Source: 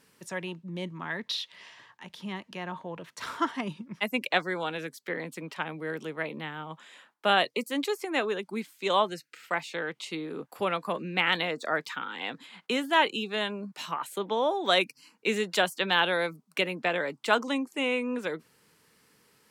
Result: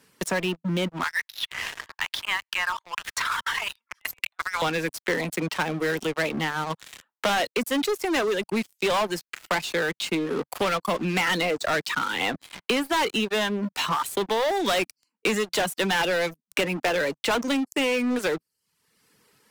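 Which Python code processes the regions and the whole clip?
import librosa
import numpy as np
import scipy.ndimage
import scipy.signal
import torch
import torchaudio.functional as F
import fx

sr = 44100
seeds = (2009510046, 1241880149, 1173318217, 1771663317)

y = fx.chain(x, sr, fx.highpass(hz=1100.0, slope=24),
    fx.over_compress(threshold_db=-40.0, ratio=-0.5), at=(1.03, 4.62))
y = fx.dereverb_blind(y, sr, rt60_s=0.69)
y = fx.leveller(y, sr, passes=5)
y = fx.band_squash(y, sr, depth_pct=70)
y = y * 10.0 ** (-8.0 / 20.0)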